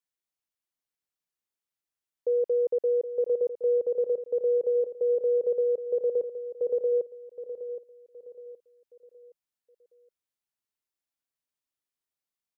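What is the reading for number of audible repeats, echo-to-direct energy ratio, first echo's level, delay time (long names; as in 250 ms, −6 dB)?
3, −10.5 dB, −11.0 dB, 769 ms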